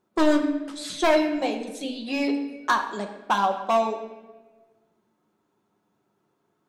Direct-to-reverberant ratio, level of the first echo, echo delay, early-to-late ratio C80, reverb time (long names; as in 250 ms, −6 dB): 2.5 dB, no echo audible, no echo audible, 9.5 dB, 1.3 s